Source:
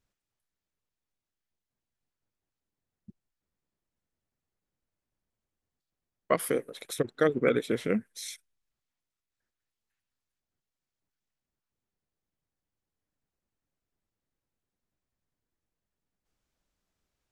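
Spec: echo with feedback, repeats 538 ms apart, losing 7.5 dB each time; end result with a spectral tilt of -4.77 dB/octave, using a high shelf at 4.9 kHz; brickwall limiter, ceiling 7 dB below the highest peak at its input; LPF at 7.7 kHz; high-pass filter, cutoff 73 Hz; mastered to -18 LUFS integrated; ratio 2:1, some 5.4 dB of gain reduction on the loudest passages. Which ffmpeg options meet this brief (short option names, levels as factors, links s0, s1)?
-af "highpass=73,lowpass=7700,highshelf=f=4900:g=-7.5,acompressor=threshold=0.0355:ratio=2,alimiter=limit=0.0891:level=0:latency=1,aecho=1:1:538|1076|1614|2152|2690:0.422|0.177|0.0744|0.0312|0.0131,volume=8.41"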